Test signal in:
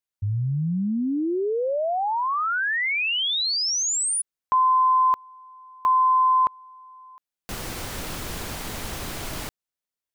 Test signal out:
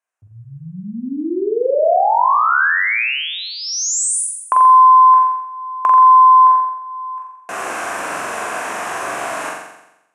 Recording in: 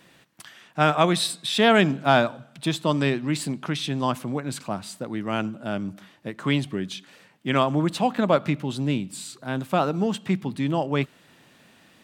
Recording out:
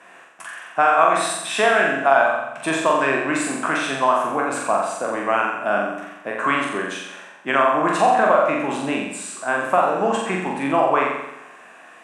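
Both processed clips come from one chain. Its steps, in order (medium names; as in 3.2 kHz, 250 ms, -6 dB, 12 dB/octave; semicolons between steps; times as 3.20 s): spectral sustain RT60 0.31 s; cabinet simulation 390–9600 Hz, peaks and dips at 690 Hz +8 dB, 1.1 kHz +9 dB, 1.6 kHz +9 dB, 2.6 kHz +8 dB, 4.6 kHz -7 dB; compression 6:1, threshold -19 dBFS; peaking EQ 3.6 kHz -11 dB 1.2 oct; on a send: flutter echo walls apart 7.5 m, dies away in 0.88 s; on the sum: trim +5 dB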